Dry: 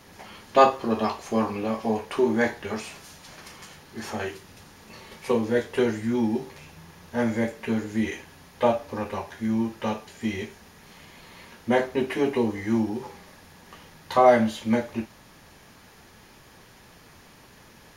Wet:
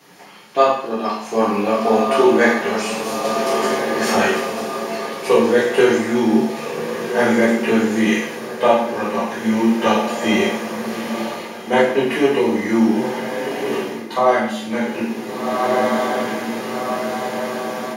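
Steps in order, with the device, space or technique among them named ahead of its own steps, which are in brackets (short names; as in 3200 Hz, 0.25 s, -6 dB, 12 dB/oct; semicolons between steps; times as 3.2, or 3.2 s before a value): diffused feedback echo 1.517 s, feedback 61%, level -12 dB; far laptop microphone (reverb RT60 0.65 s, pre-delay 3 ms, DRR -5.5 dB; HPF 170 Hz 24 dB/oct; AGC gain up to 11.5 dB); gain -1 dB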